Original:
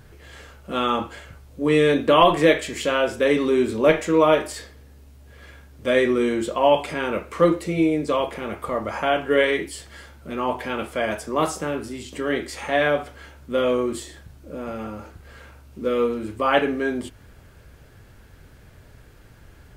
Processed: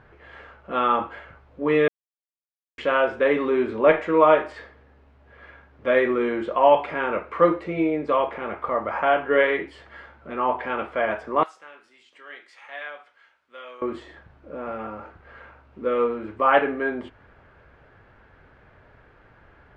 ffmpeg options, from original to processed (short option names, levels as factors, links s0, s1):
-filter_complex "[0:a]asettb=1/sr,asplit=3[s0][s1][s2];[s0]atrim=end=11.434[s3];[s1]atrim=start=11.43:end=13.82,asetpts=PTS-STARTPTS,afade=t=in:d=0.004:c=qsin,afade=t=out:st=2.386:d=0.004:c=qsin,aderivative[s4];[s2]atrim=start=13.816[s5];[s3][s4]acrossfade=d=0.004:c1=hsin:c2=qsin[s6];[s6][s5]acrossfade=d=0.004:c1=qsin:c2=hsin,asplit=3[s7][s8][s9];[s7]atrim=end=1.88,asetpts=PTS-STARTPTS,afade=t=out:st=1.876:d=0.004:c=hsin[s10];[s8]atrim=start=1.88:end=2.78,asetpts=PTS-STARTPTS,volume=0[s11];[s9]atrim=start=2.78,asetpts=PTS-STARTPTS,afade=t=in:d=0.004:c=hsin[s12];[s10][s11][s12]concat=n=3:v=0:a=1,lowpass=2600,equalizer=f=1100:w=0.36:g=12.5,volume=0.355"